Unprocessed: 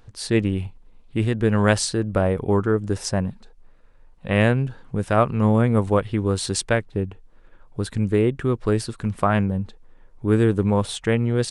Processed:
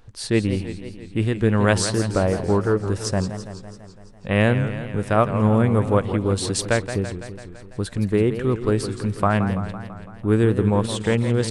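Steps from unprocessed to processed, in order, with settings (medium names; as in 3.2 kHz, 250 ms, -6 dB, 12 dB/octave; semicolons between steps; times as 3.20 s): modulated delay 167 ms, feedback 64%, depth 178 cents, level -10.5 dB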